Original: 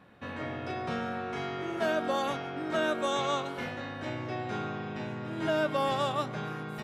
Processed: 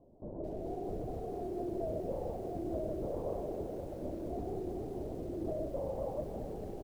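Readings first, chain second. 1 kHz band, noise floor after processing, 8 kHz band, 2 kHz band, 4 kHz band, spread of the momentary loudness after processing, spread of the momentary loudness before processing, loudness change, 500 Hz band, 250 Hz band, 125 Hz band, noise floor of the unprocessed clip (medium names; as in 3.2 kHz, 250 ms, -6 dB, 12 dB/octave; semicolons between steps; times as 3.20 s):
-13.5 dB, -44 dBFS, under -15 dB, under -30 dB, under -25 dB, 4 LU, 9 LU, -7.0 dB, -4.5 dB, -5.0 dB, -4.5 dB, -40 dBFS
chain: octave divider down 2 oct, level +3 dB; high-pass 240 Hz 12 dB/octave; spectral gate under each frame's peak -20 dB strong; steep low-pass 680 Hz 36 dB/octave; compression 6:1, threshold -35 dBFS, peak gain reduction 8.5 dB; feedback delay 152 ms, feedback 54%, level -12 dB; LPC vocoder at 8 kHz whisper; bit-crushed delay 219 ms, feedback 80%, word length 9-bit, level -13.5 dB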